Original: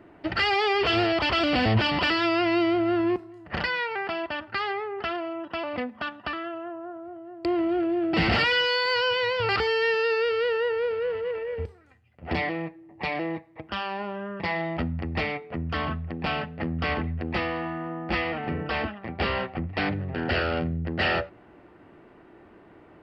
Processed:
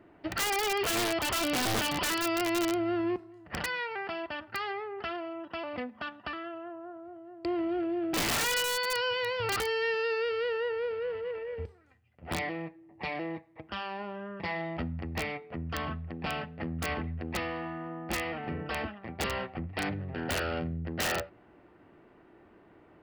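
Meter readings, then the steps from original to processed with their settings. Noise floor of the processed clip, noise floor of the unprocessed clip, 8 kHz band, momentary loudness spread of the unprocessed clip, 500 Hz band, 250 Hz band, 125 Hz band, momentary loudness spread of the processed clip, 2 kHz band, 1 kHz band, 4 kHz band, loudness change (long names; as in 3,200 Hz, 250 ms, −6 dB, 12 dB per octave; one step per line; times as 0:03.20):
−59 dBFS, −53 dBFS, can't be measured, 11 LU, −6.0 dB, −6.5 dB, −7.5 dB, 11 LU, −6.5 dB, −6.0 dB, −5.5 dB, −6.0 dB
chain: wrap-around overflow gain 17.5 dB
level −6 dB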